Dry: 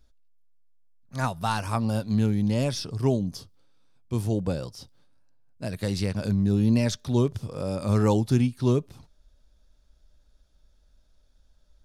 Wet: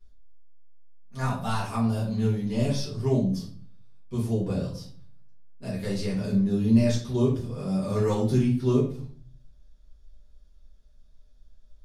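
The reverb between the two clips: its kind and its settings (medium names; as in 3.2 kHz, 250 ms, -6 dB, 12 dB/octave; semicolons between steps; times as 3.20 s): simulated room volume 48 m³, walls mixed, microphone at 1.7 m; trim -11 dB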